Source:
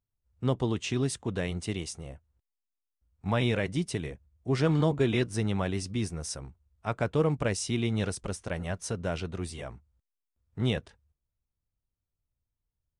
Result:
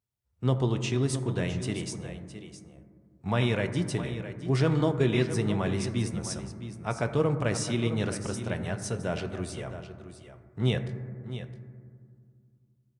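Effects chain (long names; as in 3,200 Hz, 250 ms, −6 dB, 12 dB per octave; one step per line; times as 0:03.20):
high-pass filter 78 Hz
single-tap delay 663 ms −12 dB
on a send at −8 dB: convolution reverb RT60 2.2 s, pre-delay 4 ms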